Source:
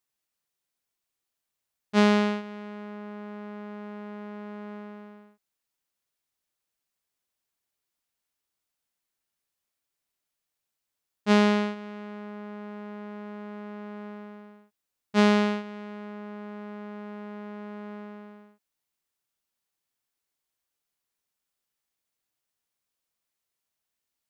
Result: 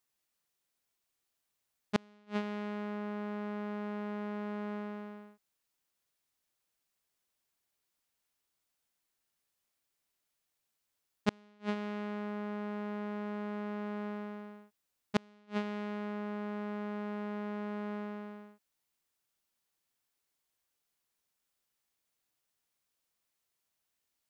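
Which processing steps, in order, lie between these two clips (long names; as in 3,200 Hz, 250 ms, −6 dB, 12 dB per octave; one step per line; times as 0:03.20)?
gate with flip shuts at −17 dBFS, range −41 dB
level +1 dB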